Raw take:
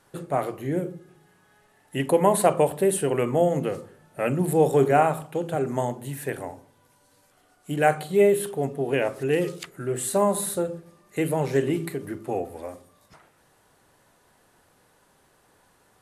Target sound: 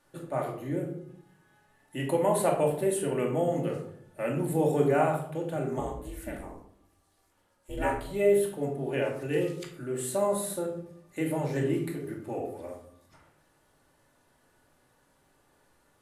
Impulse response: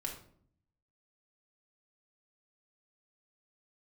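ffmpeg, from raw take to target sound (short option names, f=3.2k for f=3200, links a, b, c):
-filter_complex "[0:a]asettb=1/sr,asplit=3[a][b][c];[a]atrim=end=5.784[d];[b]atrim=start=5.78:end=8.05,asetpts=PTS-STARTPTS,afade=t=in:d=0.004:c=qsin,afade=t=out:st=2.266:d=0.004:c=qsin,aeval=exprs='val(0)*sin(2*PI*190*n/s)':c=same[e];[c]atrim=start=8.046[f];[d][e]acrossfade=d=0.004:c1=hsin:c2=qsin[g];[g][f]acrossfade=d=0.004:c1=qsin:c2=hsin[h];[1:a]atrim=start_sample=2205[i];[h][i]afir=irnorm=-1:irlink=0,volume=-5.5dB"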